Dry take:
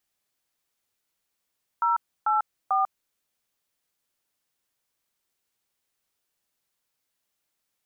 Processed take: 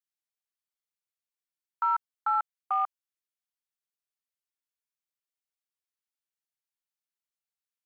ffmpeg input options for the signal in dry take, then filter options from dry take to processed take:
-f lavfi -i "aevalsrc='0.075*clip(min(mod(t,0.443),0.145-mod(t,0.443))/0.002,0,1)*(eq(floor(t/0.443),0)*(sin(2*PI*941*mod(t,0.443))+sin(2*PI*1336*mod(t,0.443)))+eq(floor(t/0.443),1)*(sin(2*PI*852*mod(t,0.443))+sin(2*PI*1336*mod(t,0.443)))+eq(floor(t/0.443),2)*(sin(2*PI*770*mod(t,0.443))+sin(2*PI*1209*mod(t,0.443))))':d=1.329:s=44100"
-af "afwtdn=0.0178,highpass=990"

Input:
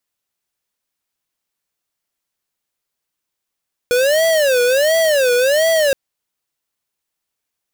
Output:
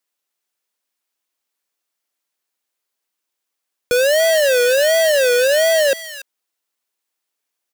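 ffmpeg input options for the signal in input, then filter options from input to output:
-f lavfi -i "aevalsrc='0.2*(2*lt(mod((571.5*t-85.5/(2*PI*1.4)*sin(2*PI*1.4*t)),1),0.5)-1)':d=2.02:s=44100"
-filter_complex "[0:a]acrossover=split=210|950[s0][s1][s2];[s0]acrusher=bits=3:dc=4:mix=0:aa=0.000001[s3];[s2]aecho=1:1:287:0.299[s4];[s3][s1][s4]amix=inputs=3:normalize=0"

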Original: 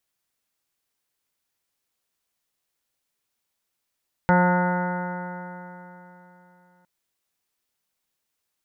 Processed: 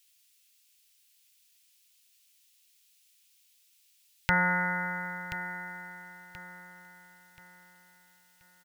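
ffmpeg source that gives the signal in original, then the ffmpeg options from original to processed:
-f lavfi -i "aevalsrc='0.141*pow(10,-3*t/3.42)*sin(2*PI*178.05*t)+0.0355*pow(10,-3*t/3.42)*sin(2*PI*356.41*t)+0.0794*pow(10,-3*t/3.42)*sin(2*PI*535.39*t)+0.0422*pow(10,-3*t/3.42)*sin(2*PI*715.3*t)+0.112*pow(10,-3*t/3.42)*sin(2*PI*896.43*t)+0.0158*pow(10,-3*t/3.42)*sin(2*PI*1079.09*t)+0.0237*pow(10,-3*t/3.42)*sin(2*PI*1263.58*t)+0.0708*pow(10,-3*t/3.42)*sin(2*PI*1450.19*t)+0.0158*pow(10,-3*t/3.42)*sin(2*PI*1639.2*t)+0.0178*pow(10,-3*t/3.42)*sin(2*PI*1830.89*t)+0.0188*pow(10,-3*t/3.42)*sin(2*PI*2025.54*t)':d=2.56:s=44100"
-af "firequalizer=gain_entry='entry(110,0);entry(220,-18);entry(2600,14)':delay=0.05:min_phase=1,aecho=1:1:1030|2060|3090|4120:0.282|0.101|0.0365|0.0131"

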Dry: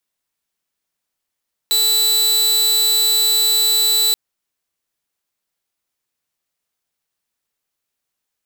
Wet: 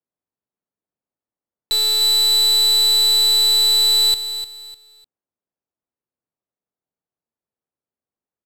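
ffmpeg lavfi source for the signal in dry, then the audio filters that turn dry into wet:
-f lavfi -i "aevalsrc='0.299*(2*mod(3970*t,1)-1)':d=2.43:s=44100"
-filter_complex "[0:a]highpass=f=120:p=1,adynamicsmooth=sensitivity=2.5:basefreq=810,asplit=2[s0][s1];[s1]aecho=0:1:301|602|903:0.282|0.0846|0.0254[s2];[s0][s2]amix=inputs=2:normalize=0"

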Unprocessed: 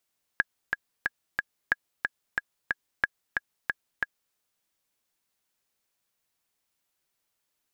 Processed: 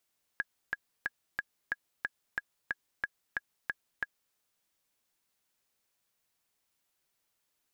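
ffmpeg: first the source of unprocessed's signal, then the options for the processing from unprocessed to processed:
-f lavfi -i "aevalsrc='pow(10,(-8.5-4*gte(mod(t,4*60/182),60/182))/20)*sin(2*PI*1660*mod(t,60/182))*exp(-6.91*mod(t,60/182)/0.03)':d=3.95:s=44100"
-af "alimiter=limit=0.106:level=0:latency=1:release=23"

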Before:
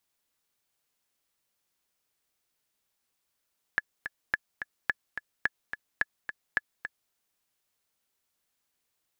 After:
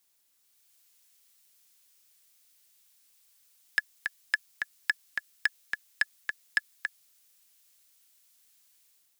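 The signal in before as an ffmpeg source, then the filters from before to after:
-f lavfi -i "aevalsrc='pow(10,(-11.5-9.5*gte(mod(t,2*60/215),60/215))/20)*sin(2*PI*1710*mod(t,60/215))*exp(-6.91*mod(t,60/215)/0.03)':d=3.34:s=44100"
-filter_complex "[0:a]highshelf=f=3300:g=10,acrossover=split=370|1600[s0][s1][s2];[s2]dynaudnorm=f=370:g=3:m=2.11[s3];[s0][s1][s3]amix=inputs=3:normalize=0,asoftclip=type=tanh:threshold=0.188"

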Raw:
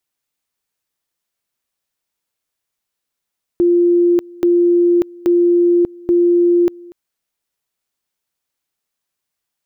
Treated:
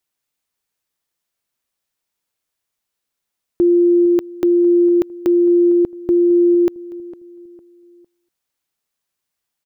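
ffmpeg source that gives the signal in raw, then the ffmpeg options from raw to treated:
-f lavfi -i "aevalsrc='pow(10,(-9-24.5*gte(mod(t,0.83),0.59))/20)*sin(2*PI*348*t)':d=3.32:s=44100"
-filter_complex "[0:a]asplit=2[s0][s1];[s1]adelay=455,lowpass=f=900:p=1,volume=0.141,asplit=2[s2][s3];[s3]adelay=455,lowpass=f=900:p=1,volume=0.4,asplit=2[s4][s5];[s5]adelay=455,lowpass=f=900:p=1,volume=0.4[s6];[s0][s2][s4][s6]amix=inputs=4:normalize=0"

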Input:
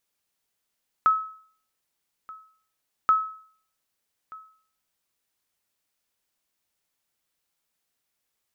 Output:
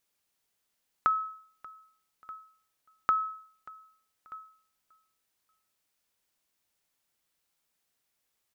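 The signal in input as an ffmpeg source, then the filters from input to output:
-f lavfi -i "aevalsrc='0.237*(sin(2*PI*1290*mod(t,2.03))*exp(-6.91*mod(t,2.03)/0.52)+0.075*sin(2*PI*1290*max(mod(t,2.03)-1.23,0))*exp(-6.91*max(mod(t,2.03)-1.23,0)/0.52))':d=4.06:s=44100"
-af "acompressor=threshold=0.0708:ratio=6,aecho=1:1:585|1170:0.0794|0.0238"

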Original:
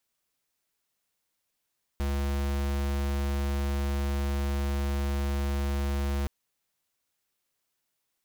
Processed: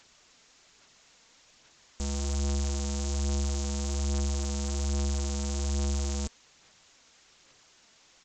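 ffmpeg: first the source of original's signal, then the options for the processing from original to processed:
-f lavfi -i "aevalsrc='0.0376*(2*lt(mod(70*t,1),0.5)-1)':d=4.27:s=44100"
-af "highshelf=f=3700:g=2.5,aresample=16000,aeval=exprs='0.0531*sin(PI/2*7.94*val(0)/0.0531)':c=same,aresample=44100,aphaser=in_gain=1:out_gain=1:delay=4.5:decay=0.29:speed=1.2:type=sinusoidal"

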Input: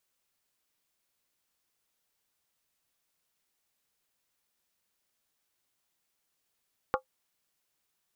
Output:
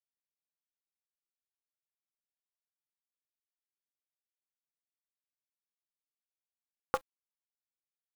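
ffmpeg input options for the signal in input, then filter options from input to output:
-f lavfi -i "aevalsrc='0.0708*pow(10,-3*t/0.11)*sin(2*PI*521*t)+0.0631*pow(10,-3*t/0.087)*sin(2*PI*830.5*t)+0.0562*pow(10,-3*t/0.075)*sin(2*PI*1112.9*t)+0.0501*pow(10,-3*t/0.073)*sin(2*PI*1196.2*t)+0.0447*pow(10,-3*t/0.068)*sin(2*PI*1382.2*t)':d=0.63:s=44100"
-af "acrusher=bits=7:dc=4:mix=0:aa=0.000001"

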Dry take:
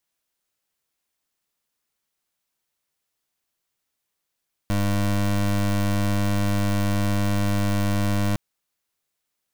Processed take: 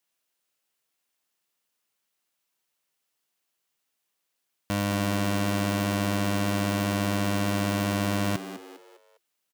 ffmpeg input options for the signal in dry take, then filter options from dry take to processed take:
-f lavfi -i "aevalsrc='0.0841*(2*lt(mod(101*t,1),0.24)-1)':d=3.66:s=44100"
-filter_complex "[0:a]highpass=f=190:p=1,equalizer=f=2800:t=o:w=0.23:g=3,asplit=2[s0][s1];[s1]asplit=4[s2][s3][s4][s5];[s2]adelay=202,afreqshift=86,volume=0.251[s6];[s3]adelay=404,afreqshift=172,volume=0.104[s7];[s4]adelay=606,afreqshift=258,volume=0.0422[s8];[s5]adelay=808,afreqshift=344,volume=0.0174[s9];[s6][s7][s8][s9]amix=inputs=4:normalize=0[s10];[s0][s10]amix=inputs=2:normalize=0"

